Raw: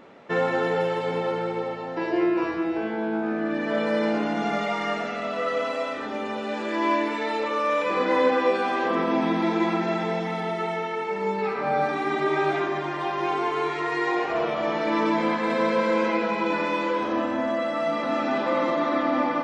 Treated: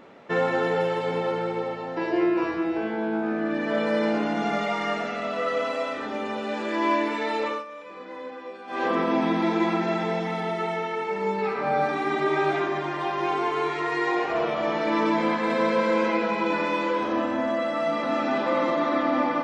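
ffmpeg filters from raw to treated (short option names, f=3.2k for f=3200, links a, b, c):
-filter_complex "[0:a]asplit=3[a][b][c];[a]atrim=end=7.65,asetpts=PTS-STARTPTS,afade=t=out:st=7.48:d=0.17:silence=0.141254[d];[b]atrim=start=7.65:end=8.67,asetpts=PTS-STARTPTS,volume=-17dB[e];[c]atrim=start=8.67,asetpts=PTS-STARTPTS,afade=t=in:d=0.17:silence=0.141254[f];[d][e][f]concat=n=3:v=0:a=1"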